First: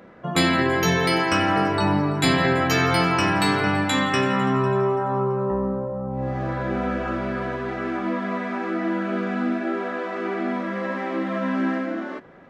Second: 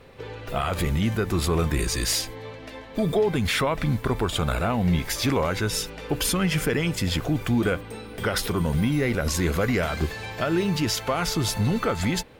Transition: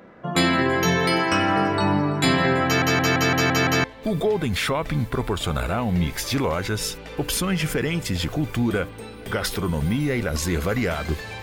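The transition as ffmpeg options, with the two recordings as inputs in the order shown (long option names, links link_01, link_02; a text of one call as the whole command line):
ffmpeg -i cue0.wav -i cue1.wav -filter_complex "[0:a]apad=whole_dur=11.42,atrim=end=11.42,asplit=7[link_01][link_02][link_03][link_04][link_05][link_06][link_07];[link_01]atrim=end=2.822[link_08];[link_02]atrim=start=2.648:end=2.822[link_09];[link_03]atrim=start=2.648:end=2.822[link_10];[link_04]atrim=start=2.648:end=2.822[link_11];[link_05]atrim=start=2.648:end=2.822[link_12];[link_06]atrim=start=2.648:end=2.822[link_13];[link_07]atrim=start=2.648:end=2.822[link_14];[1:a]atrim=start=2.758:end=10.34[link_15];[link_08][link_09]acrossfade=duration=0.004:curve1=hsin:curve2=hsin[link_16];[link_16][link_10]acrossfade=duration=0.004:curve1=hsin:curve2=hsin[link_17];[link_17][link_11]acrossfade=duration=0.004:curve1=hsin:curve2=hsin[link_18];[link_18][link_12]acrossfade=duration=0.004:curve1=hsin:curve2=hsin[link_19];[link_19][link_13]acrossfade=duration=0.004:curve1=hsin:curve2=hsin[link_20];[link_20][link_14]acrossfade=duration=0.004:curve1=hsin:curve2=hsin[link_21];[link_21][link_15]acrossfade=duration=0.004:curve1=hsin:curve2=hsin" out.wav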